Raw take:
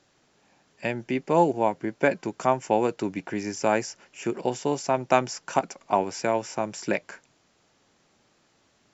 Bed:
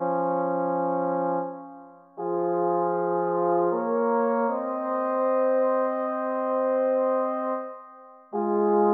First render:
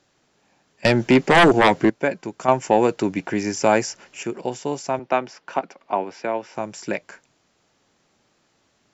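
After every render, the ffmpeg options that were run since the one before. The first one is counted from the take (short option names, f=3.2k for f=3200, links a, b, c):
-filter_complex "[0:a]asettb=1/sr,asplit=3[a][b][c];[a]atrim=end=0.854[d];[b]atrim=start=0.85:end=1.9,asetpts=PTS-STARTPTS,afade=t=in:d=0.004:c=qsin,afade=t=out:st=1.046:d=0.004:c=qsin,aeval=exprs='0.376*sin(PI/2*3.55*val(0)/0.376)':c=same[e];[c]atrim=start=1.896[f];[d][e]acrossfade=d=0.004:c1=hsin:c2=qsin[g];[g][f]acrossfade=d=0.004:c1=qsin:c2=hsin,asettb=1/sr,asplit=3[h][i][j];[h]atrim=end=2.484[k];[i]atrim=start=2.48:end=4.23,asetpts=PTS-STARTPTS,afade=t=in:d=0.004:c=qsin,afade=t=out:st=1.746:d=0.004:c=qsin,acontrast=73[l];[j]atrim=start=4.226[m];[k][l]acrossfade=d=0.004:c1=hsin:c2=qsin[n];[n][m]acrossfade=d=0.004:c1=qsin:c2=hsin,asettb=1/sr,asplit=3[o][p][q];[o]atrim=end=4.994[r];[p]atrim=start=4.99:end=6.55,asetpts=PTS-STARTPTS,afade=t=in:d=0.004:c=qsin,afade=t=out:st=1.556:d=0.004:c=qsin,acrossover=split=190 4500:gain=0.251 1 0.0631[s][t][u];[s][t][u]amix=inputs=3:normalize=0[v];[q]atrim=start=6.546[w];[r][v]acrossfade=d=0.004:c1=hsin:c2=qsin[x];[x][w]acrossfade=d=0.004:c1=qsin:c2=hsin"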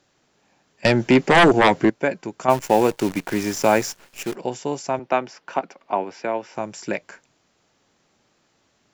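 -filter_complex "[0:a]asplit=3[a][b][c];[a]afade=t=out:st=2.49:d=0.02[d];[b]acrusher=bits=6:dc=4:mix=0:aa=0.000001,afade=t=in:st=2.49:d=0.02,afade=t=out:st=4.34:d=0.02[e];[c]afade=t=in:st=4.34:d=0.02[f];[d][e][f]amix=inputs=3:normalize=0"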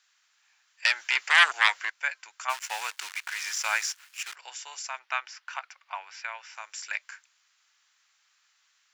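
-filter_complex "[0:a]acrossover=split=9300[a][b];[b]acompressor=threshold=-47dB:ratio=4:attack=1:release=60[c];[a][c]amix=inputs=2:normalize=0,highpass=f=1.3k:w=0.5412,highpass=f=1.3k:w=1.3066"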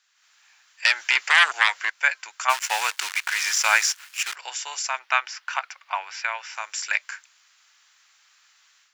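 -af "alimiter=limit=-12.5dB:level=0:latency=1:release=368,dynaudnorm=f=140:g=3:m=9dB"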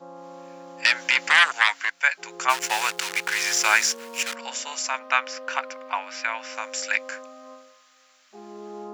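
-filter_complex "[1:a]volume=-17dB[a];[0:a][a]amix=inputs=2:normalize=0"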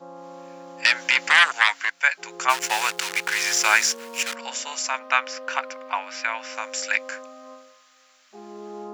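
-af "volume=1dB"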